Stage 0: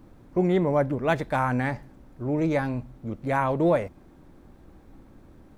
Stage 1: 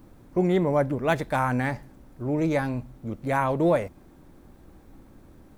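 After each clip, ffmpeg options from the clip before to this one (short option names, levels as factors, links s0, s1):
-af "highshelf=f=7000:g=8.5"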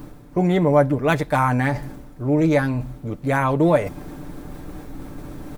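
-af "aecho=1:1:6.8:0.44,areverse,acompressor=mode=upward:threshold=0.0447:ratio=2.5,areverse,volume=1.68"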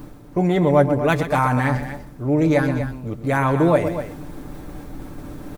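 -af "aecho=1:1:125.4|244.9:0.282|0.282"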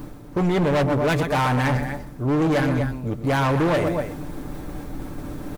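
-af "volume=9.44,asoftclip=hard,volume=0.106,volume=1.26"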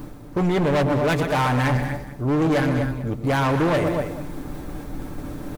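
-af "aecho=1:1:196:0.224"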